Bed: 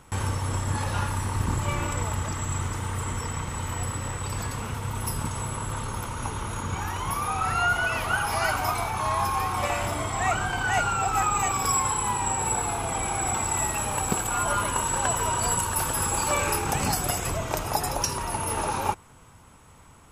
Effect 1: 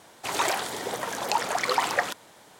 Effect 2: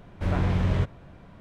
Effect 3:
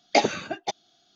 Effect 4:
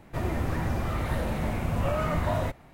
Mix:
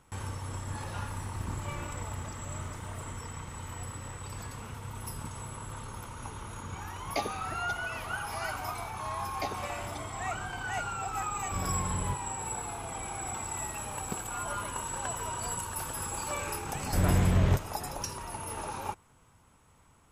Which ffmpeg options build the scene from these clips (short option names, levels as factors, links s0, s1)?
-filter_complex "[3:a]asplit=2[s0][s1];[2:a]asplit=2[s2][s3];[0:a]volume=0.316[s4];[4:a]acompressor=threshold=0.0251:ratio=6:attack=3.2:release=140:knee=1:detection=peak[s5];[s0]acrusher=bits=8:mix=0:aa=0.000001[s6];[s5]atrim=end=2.73,asetpts=PTS-STARTPTS,volume=0.237,afade=t=in:d=0.004:c=hsin,afade=t=out:st=2.726:d=0.004:c=hsin,adelay=590[s7];[s6]atrim=end=1.15,asetpts=PTS-STARTPTS,volume=0.224,afade=t=in:d=0.004:c=hsin,afade=t=out:st=1.146:d=0.004:c=hsin,adelay=7010[s8];[s1]atrim=end=1.15,asetpts=PTS-STARTPTS,volume=0.141,afade=t=in:d=0.004:c=hsin,afade=t=out:st=1.146:d=0.004:c=hsin,adelay=9270[s9];[s2]atrim=end=1.4,asetpts=PTS-STARTPTS,volume=0.316,afade=t=in:d=0.004:c=hsin,afade=t=out:st=1.396:d=0.004:c=hsin,adelay=498330S[s10];[s3]atrim=end=1.4,asetpts=PTS-STARTPTS,volume=0.944,afade=t=in:d=0.004:c=hsin,afade=t=out:st=1.396:d=0.004:c=hsin,adelay=16720[s11];[s4][s7][s8][s9][s10][s11]amix=inputs=6:normalize=0"